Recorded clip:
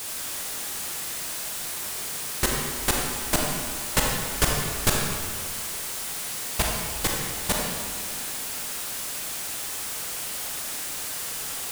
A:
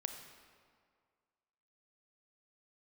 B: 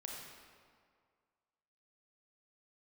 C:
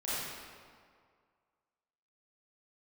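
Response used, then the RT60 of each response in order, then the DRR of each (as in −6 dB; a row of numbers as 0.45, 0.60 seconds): B; 2.0, 2.0, 2.0 seconds; 5.5, −1.5, −11.5 decibels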